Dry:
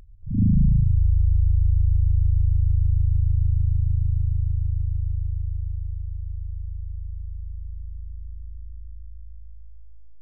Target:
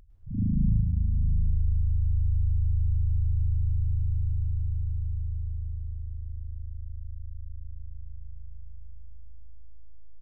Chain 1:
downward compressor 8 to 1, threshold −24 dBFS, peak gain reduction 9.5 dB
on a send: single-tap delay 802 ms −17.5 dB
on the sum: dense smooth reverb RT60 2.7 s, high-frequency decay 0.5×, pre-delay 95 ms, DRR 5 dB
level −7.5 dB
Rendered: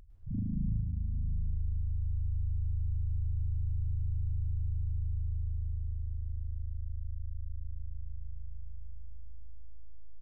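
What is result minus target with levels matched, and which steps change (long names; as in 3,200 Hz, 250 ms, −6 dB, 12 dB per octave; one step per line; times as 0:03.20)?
downward compressor: peak gain reduction +9.5 dB
remove: downward compressor 8 to 1, threshold −24 dBFS, peak gain reduction 9.5 dB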